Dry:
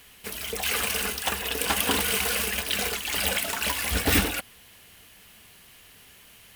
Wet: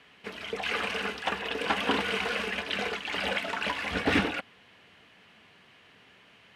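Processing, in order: band-pass 140–2700 Hz

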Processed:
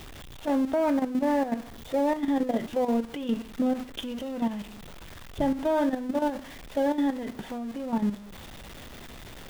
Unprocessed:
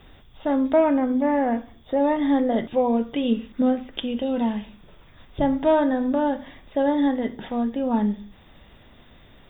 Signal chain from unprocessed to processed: jump at every zero crossing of -29.5 dBFS; level held to a coarse grid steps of 10 dB; trim -3.5 dB

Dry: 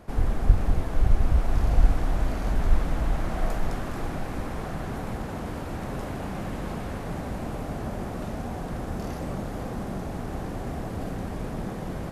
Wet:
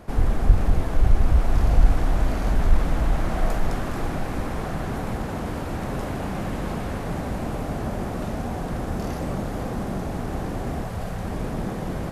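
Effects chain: 10.83–11.25 s: peaking EQ 300 Hz -13.5 dB 0.71 oct; in parallel at -4 dB: saturation -14.5 dBFS, distortion -12 dB

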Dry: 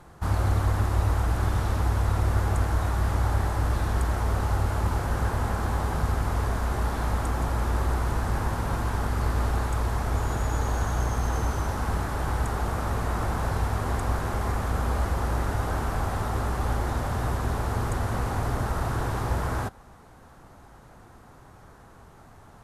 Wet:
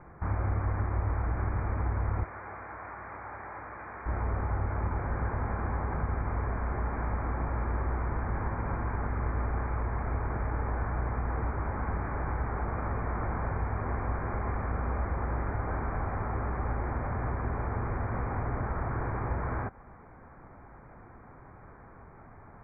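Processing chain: Chebyshev low-pass 2.4 kHz, order 10; compression 1.5:1, threshold -35 dBFS, peak gain reduction 6 dB; 2.24–4.06 s: high-pass 990 Hz 6 dB/octave

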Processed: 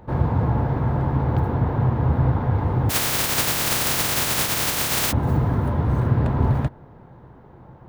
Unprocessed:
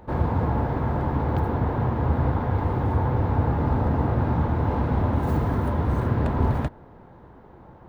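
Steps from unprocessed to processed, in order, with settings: 2.89–5.11 s: spectral contrast reduction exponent 0.11; peaking EQ 130 Hz +7 dB 0.69 oct

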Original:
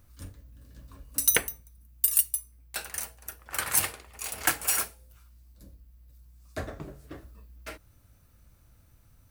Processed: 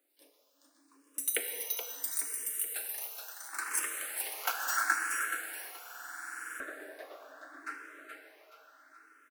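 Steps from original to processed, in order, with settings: steep high-pass 270 Hz 96 dB/octave; peaking EQ 1.5 kHz -3 dB 0.73 oct, from 2.17 s +4.5 dB, from 4.30 s +14.5 dB; feedback delay 425 ms, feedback 41%, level -5 dB; plate-style reverb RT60 4.1 s, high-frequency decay 0.9×, DRR 2 dB; buffer glitch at 5.81 s, samples 2048, times 16; barber-pole phaser +0.74 Hz; trim -7 dB

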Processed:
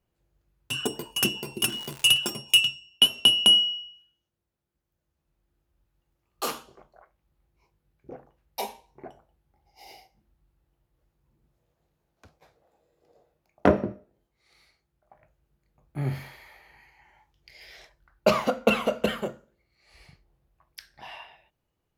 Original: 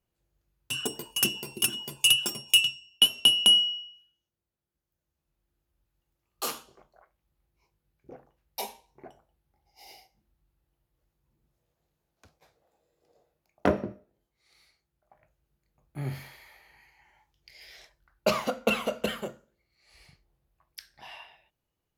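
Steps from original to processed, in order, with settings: treble shelf 3.1 kHz -7 dB; 1.61–2.17 s: crackle 220 per s -34 dBFS; trim +5 dB

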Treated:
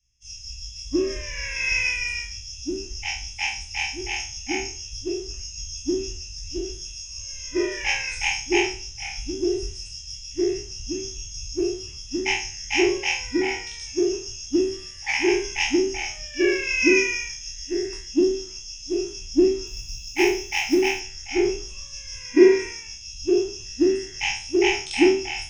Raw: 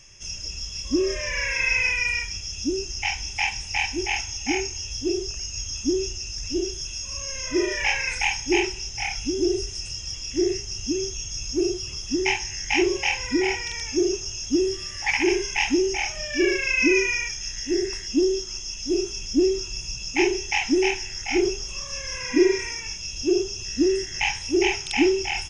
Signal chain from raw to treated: spectral sustain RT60 0.51 s; hum 60 Hz, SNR 31 dB; 19.67–21.00 s: companded quantiser 6-bit; three bands expanded up and down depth 100%; trim -3.5 dB

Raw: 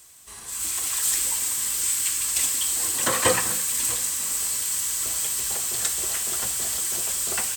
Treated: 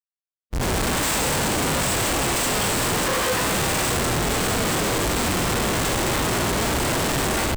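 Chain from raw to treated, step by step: Schmitt trigger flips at -22.5 dBFS; harmonic-percussive split harmonic +6 dB

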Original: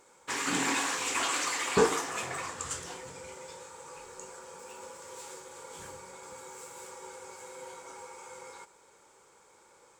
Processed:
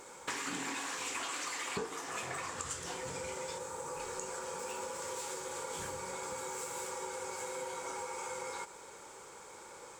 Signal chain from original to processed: 3.58–4.00 s: peaking EQ 3.1 kHz -7.5 dB 2.4 oct; compression 8:1, threshold -46 dBFS, peak gain reduction 26 dB; trim +9 dB

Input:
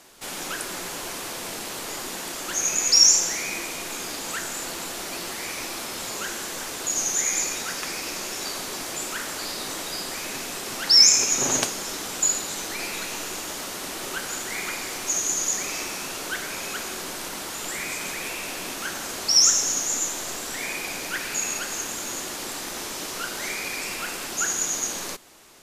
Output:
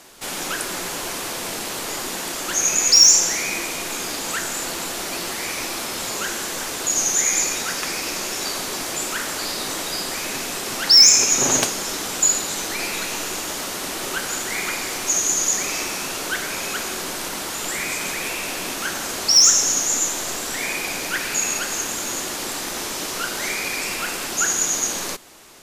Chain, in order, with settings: saturation -7.5 dBFS, distortion -21 dB; trim +5 dB

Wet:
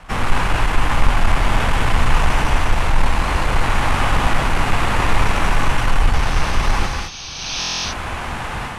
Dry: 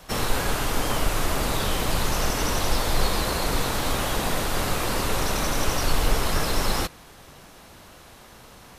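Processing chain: square wave that keeps the level; low-pass 11 kHz 24 dB/octave; high-order bell 1.5 kHz +10 dB 2.3 oct; painted sound noise, 6.13–7.71 s, 2.2–6.5 kHz -30 dBFS; bass shelf 160 Hz +10.5 dB; level rider gain up to 14 dB; gated-style reverb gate 240 ms rising, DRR 2.5 dB; buffer glitch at 7.59 s, samples 1024, times 10; trim -5.5 dB

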